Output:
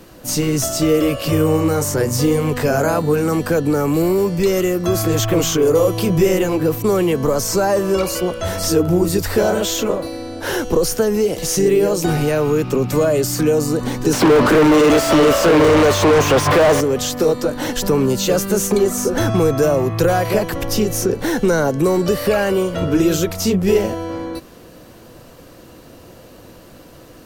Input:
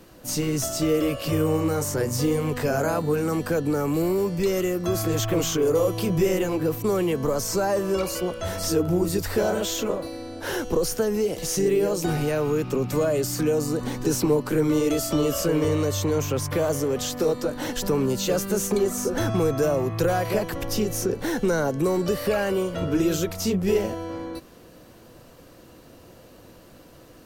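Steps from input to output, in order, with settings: 14.13–16.81 s: overdrive pedal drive 37 dB, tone 1.5 kHz, clips at -12 dBFS; trim +7 dB

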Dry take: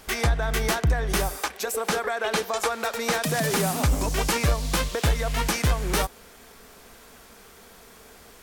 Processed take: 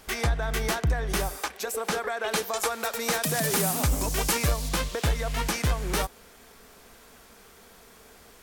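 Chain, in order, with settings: 2.28–4.69 s: treble shelf 7.6 kHz +9.5 dB; trim -3 dB

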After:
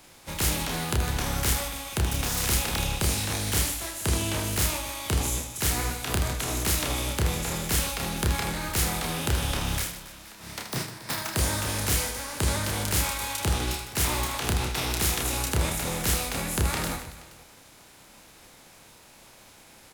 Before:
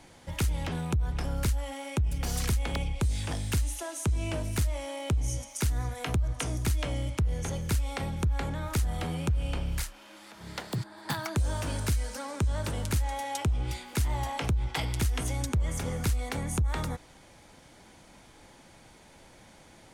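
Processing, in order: spectral contrast reduction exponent 0.55; reverse bouncing-ball echo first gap 30 ms, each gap 1.6×, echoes 5; formant shift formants +2 st

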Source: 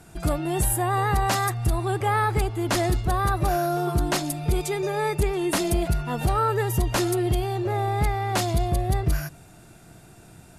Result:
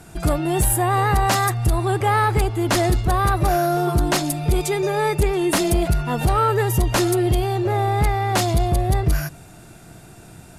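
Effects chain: saturation -14 dBFS, distortion -23 dB; trim +5.5 dB

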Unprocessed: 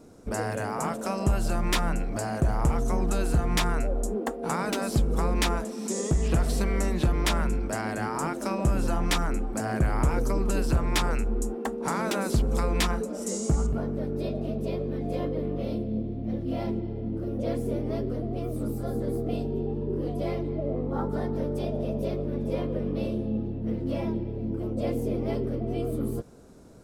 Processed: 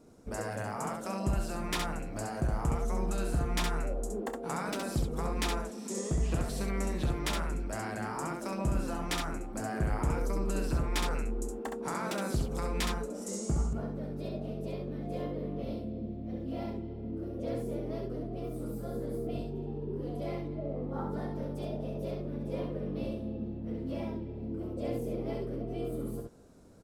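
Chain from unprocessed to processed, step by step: early reflections 30 ms -14.5 dB, 67 ms -4 dB; trim -7.5 dB

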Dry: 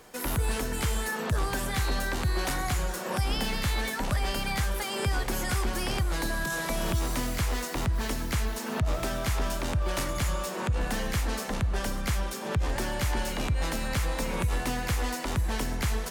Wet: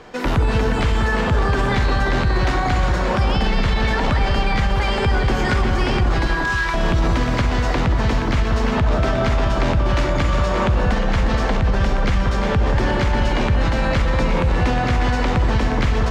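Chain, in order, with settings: 6.27–6.74 s: Chebyshev high-pass 960 Hz, order 5; short-mantissa float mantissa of 4-bit; distance through air 170 m; echo whose repeats swap between lows and highs 179 ms, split 1.5 kHz, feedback 67%, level -3.5 dB; reverberation RT60 0.45 s, pre-delay 38 ms, DRR 12 dB; loudness maximiser +20.5 dB; trim -8.5 dB

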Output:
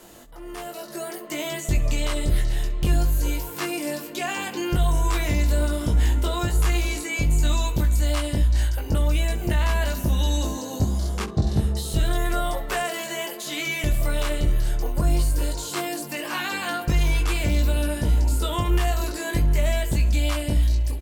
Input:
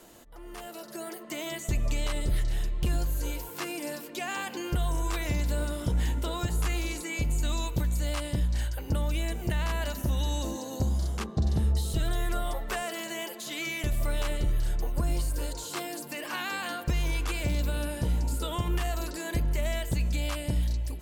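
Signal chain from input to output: early reflections 20 ms -4 dB, 68 ms -17 dB; trim +4.5 dB

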